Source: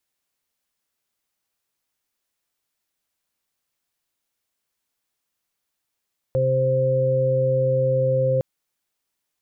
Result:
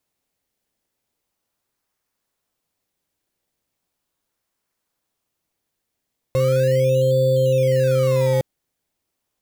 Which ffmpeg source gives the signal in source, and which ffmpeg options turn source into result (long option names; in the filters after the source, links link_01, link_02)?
-f lavfi -i "aevalsrc='0.0794*sin(2*PI*131*t)+0.00944*sin(2*PI*262*t)+0.02*sin(2*PI*393*t)+0.119*sin(2*PI*524*t)':duration=2.06:sample_rate=44100"
-filter_complex "[0:a]asplit=2[link_01][link_02];[link_02]acrusher=samples=22:mix=1:aa=0.000001:lfo=1:lforange=22:lforate=0.38,volume=-7dB[link_03];[link_01][link_03]amix=inputs=2:normalize=0"